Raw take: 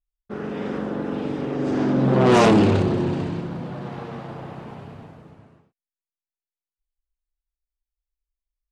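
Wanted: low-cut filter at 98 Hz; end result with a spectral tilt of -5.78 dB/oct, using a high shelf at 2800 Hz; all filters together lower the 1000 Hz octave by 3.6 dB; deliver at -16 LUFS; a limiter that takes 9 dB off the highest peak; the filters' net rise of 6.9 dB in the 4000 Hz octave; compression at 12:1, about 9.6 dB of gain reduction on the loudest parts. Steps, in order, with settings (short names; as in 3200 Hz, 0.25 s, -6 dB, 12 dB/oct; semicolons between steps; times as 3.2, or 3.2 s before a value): HPF 98 Hz; bell 1000 Hz -6 dB; high shelf 2800 Hz +7.5 dB; bell 4000 Hz +3.5 dB; compressor 12:1, threshold -21 dBFS; gain +16.5 dB; limiter -6.5 dBFS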